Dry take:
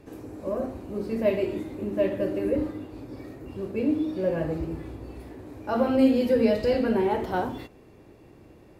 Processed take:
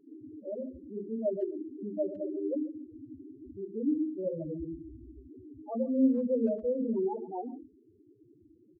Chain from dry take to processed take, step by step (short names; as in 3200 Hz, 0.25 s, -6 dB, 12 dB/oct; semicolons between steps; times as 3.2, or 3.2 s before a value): bell 300 Hz +3.5 dB 1.1 oct; loudest bins only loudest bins 4; speakerphone echo 0.14 s, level -18 dB; gain -7.5 dB